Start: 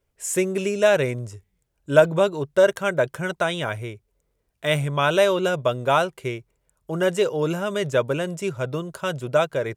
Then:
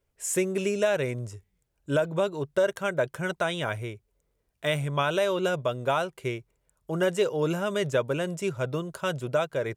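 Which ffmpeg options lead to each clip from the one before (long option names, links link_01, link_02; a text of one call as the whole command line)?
ffmpeg -i in.wav -af "alimiter=limit=-12dB:level=0:latency=1:release=317,volume=-2.5dB" out.wav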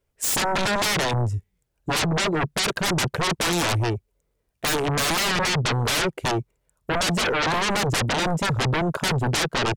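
ffmpeg -i in.wav -af "afwtdn=0.0126,aeval=exprs='0.211*sin(PI/2*10*val(0)/0.211)':channel_layout=same,volume=-6dB" out.wav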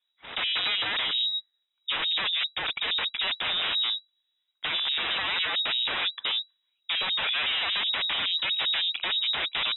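ffmpeg -i in.wav -af "lowpass=frequency=3300:width_type=q:width=0.5098,lowpass=frequency=3300:width_type=q:width=0.6013,lowpass=frequency=3300:width_type=q:width=0.9,lowpass=frequency=3300:width_type=q:width=2.563,afreqshift=-3900,volume=-4.5dB" out.wav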